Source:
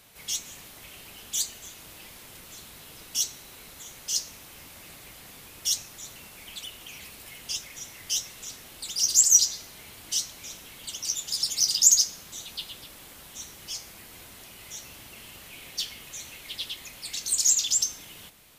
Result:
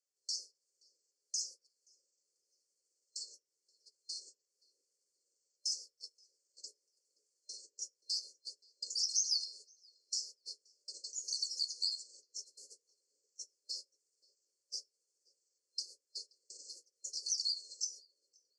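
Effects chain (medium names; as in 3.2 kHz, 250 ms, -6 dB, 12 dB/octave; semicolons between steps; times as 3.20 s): sawtooth pitch modulation -11 st, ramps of 1113 ms; gate -39 dBFS, range -37 dB; elliptic band-pass 410–7500 Hz, stop band 40 dB; treble shelf 2.4 kHz +9.5 dB; compression 2.5:1, threshold -42 dBFS, peak gain reduction 23 dB; FFT band-reject 590–4200 Hz; tape echo 527 ms, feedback 57%, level -16 dB, low-pass 1 kHz; on a send at -11 dB: reverberation RT60 0.30 s, pre-delay 3 ms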